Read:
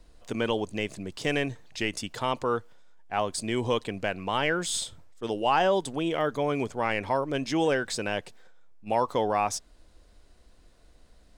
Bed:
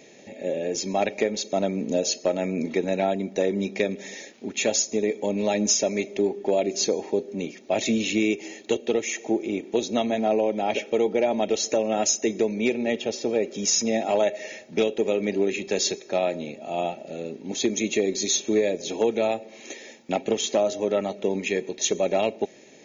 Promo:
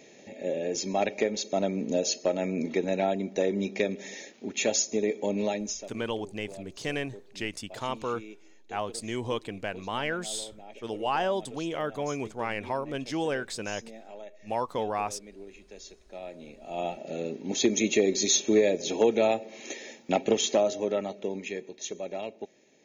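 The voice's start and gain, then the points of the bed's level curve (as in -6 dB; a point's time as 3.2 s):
5.60 s, -4.5 dB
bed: 5.43 s -3 dB
5.97 s -22.5 dB
15.94 s -22.5 dB
17.08 s 0 dB
20.39 s 0 dB
21.86 s -12.5 dB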